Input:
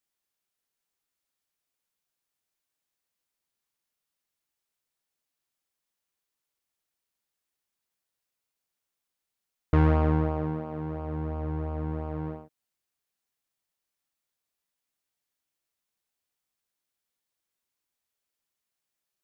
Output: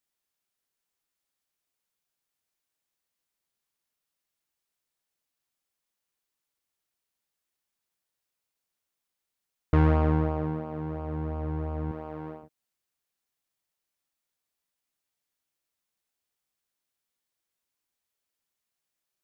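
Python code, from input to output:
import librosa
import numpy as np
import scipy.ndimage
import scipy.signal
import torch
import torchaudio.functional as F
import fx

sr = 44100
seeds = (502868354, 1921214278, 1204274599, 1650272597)

y = fx.highpass(x, sr, hz=330.0, slope=6, at=(11.91, 12.43))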